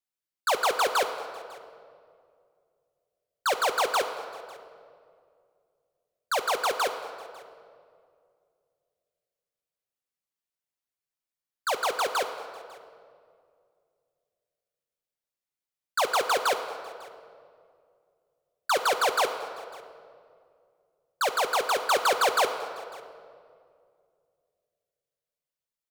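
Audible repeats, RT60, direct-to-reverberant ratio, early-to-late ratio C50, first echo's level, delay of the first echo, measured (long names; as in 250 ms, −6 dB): 1, 2.3 s, 6.0 dB, 9.0 dB, −22.5 dB, 549 ms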